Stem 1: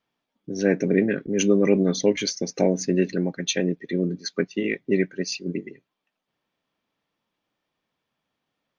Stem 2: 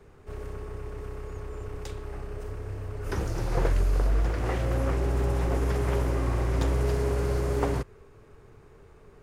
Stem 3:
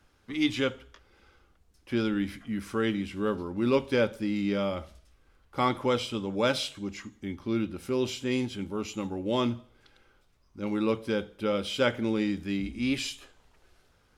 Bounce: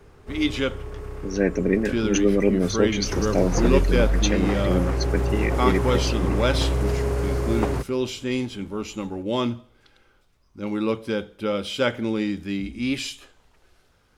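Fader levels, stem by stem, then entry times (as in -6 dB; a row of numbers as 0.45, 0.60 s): -1.0, +2.5, +3.0 dB; 0.75, 0.00, 0.00 s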